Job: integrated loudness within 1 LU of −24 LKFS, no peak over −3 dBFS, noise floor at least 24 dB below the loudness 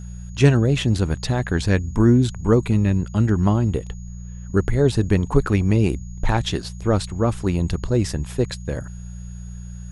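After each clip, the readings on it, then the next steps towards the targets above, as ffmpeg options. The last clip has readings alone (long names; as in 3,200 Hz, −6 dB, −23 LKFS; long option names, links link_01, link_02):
mains hum 60 Hz; hum harmonics up to 180 Hz; level of the hum −32 dBFS; interfering tone 6,700 Hz; level of the tone −50 dBFS; integrated loudness −20.5 LKFS; sample peak −2.0 dBFS; target loudness −24.0 LKFS
→ -af "bandreject=frequency=60:width_type=h:width=4,bandreject=frequency=120:width_type=h:width=4,bandreject=frequency=180:width_type=h:width=4"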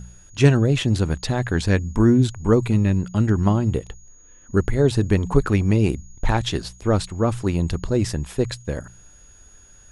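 mains hum none found; interfering tone 6,700 Hz; level of the tone −50 dBFS
→ -af "bandreject=frequency=6700:width=30"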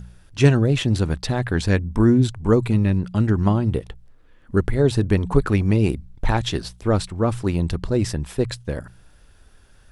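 interfering tone none found; integrated loudness −21.0 LKFS; sample peak −2.0 dBFS; target loudness −24.0 LKFS
→ -af "volume=-3dB"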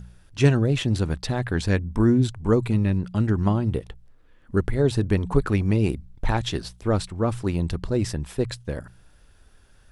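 integrated loudness −24.0 LKFS; sample peak −5.0 dBFS; background noise floor −54 dBFS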